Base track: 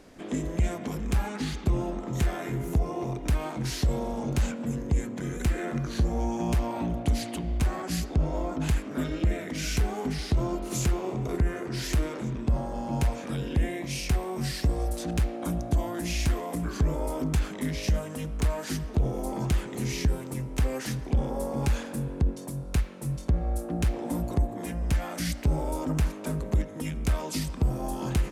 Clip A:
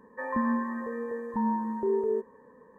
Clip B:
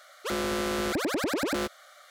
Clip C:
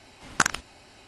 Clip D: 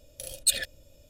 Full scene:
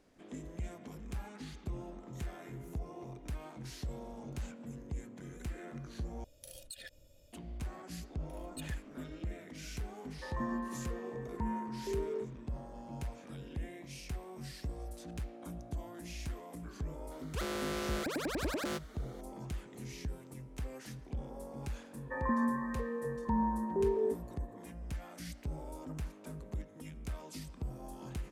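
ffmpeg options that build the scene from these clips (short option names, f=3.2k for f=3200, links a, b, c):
-filter_complex "[4:a]asplit=2[a][b];[1:a]asplit=2[c][d];[0:a]volume=-15dB[e];[a]acompressor=threshold=-38dB:ratio=6:attack=3.2:release=140:knee=1:detection=peak[f];[b]highshelf=f=3.2k:t=q:w=1.5:g=-10[g];[e]asplit=2[h][i];[h]atrim=end=6.244[j];[f]atrim=end=1.09,asetpts=PTS-STARTPTS,volume=-7dB[k];[i]atrim=start=7.326[l];[g]atrim=end=1.09,asetpts=PTS-STARTPTS,volume=-16dB,afade=t=in:d=0.004:c=hsin,afade=t=out:st=1.086:d=0.004:c=hsin,adelay=357210S[m];[c]atrim=end=2.78,asetpts=PTS-STARTPTS,volume=-10dB,afade=t=in:d=0.004:c=hsin,afade=t=out:st=2.776:d=0.004:c=hsin,adelay=10040[n];[2:a]atrim=end=2.1,asetpts=PTS-STARTPTS,volume=-8dB,afade=t=in:d=0.004:c=hsin,afade=t=out:st=2.096:d=0.004:c=hsin,adelay=17110[o];[d]atrim=end=2.78,asetpts=PTS-STARTPTS,volume=-4dB,afade=t=in:d=0.004:c=hsin,afade=t=out:st=2.776:d=0.004:c=hsin,adelay=21930[p];[j][k]acrossfade=d=0.004:c1=hsin:c2=hsin[q];[q][l]acrossfade=d=0.004:c1=hsin:c2=hsin[r];[r][m][n][o][p]amix=inputs=5:normalize=0"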